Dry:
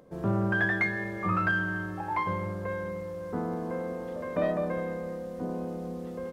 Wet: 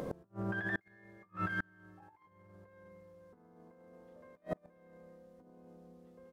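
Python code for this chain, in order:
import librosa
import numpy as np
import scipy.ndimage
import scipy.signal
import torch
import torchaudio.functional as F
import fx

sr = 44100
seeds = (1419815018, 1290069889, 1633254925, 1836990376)

y = fx.over_compress(x, sr, threshold_db=-35.0, ratio=-0.5)
y = fx.echo_wet_highpass(y, sr, ms=685, feedback_pct=35, hz=2300.0, wet_db=-14.0)
y = fx.gate_flip(y, sr, shuts_db=-35.0, range_db=-36)
y = y * librosa.db_to_amplitude(11.5)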